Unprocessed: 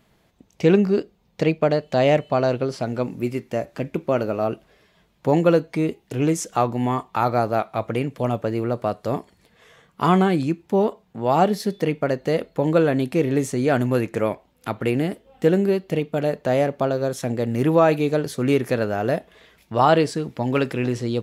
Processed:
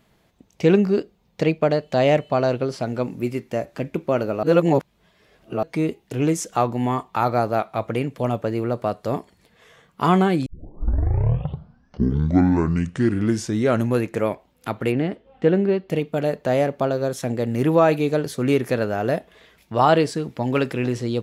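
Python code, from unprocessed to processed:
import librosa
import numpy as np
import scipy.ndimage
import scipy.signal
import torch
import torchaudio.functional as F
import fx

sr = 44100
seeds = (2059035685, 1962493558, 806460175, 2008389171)

y = fx.lowpass(x, sr, hz=3300.0, slope=12, at=(14.92, 15.9))
y = fx.edit(y, sr, fx.reverse_span(start_s=4.43, length_s=1.2),
    fx.tape_start(start_s=10.46, length_s=3.59), tone=tone)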